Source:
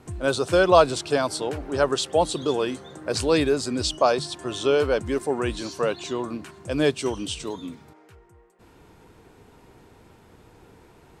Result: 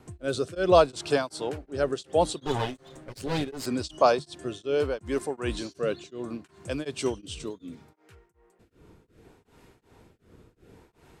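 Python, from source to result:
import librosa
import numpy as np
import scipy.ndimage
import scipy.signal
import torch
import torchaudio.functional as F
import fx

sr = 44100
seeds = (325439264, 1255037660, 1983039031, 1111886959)

y = fx.lower_of_two(x, sr, delay_ms=7.4, at=(2.46, 3.66))
y = fx.rotary(y, sr, hz=0.7)
y = y * np.abs(np.cos(np.pi * 2.7 * np.arange(len(y)) / sr))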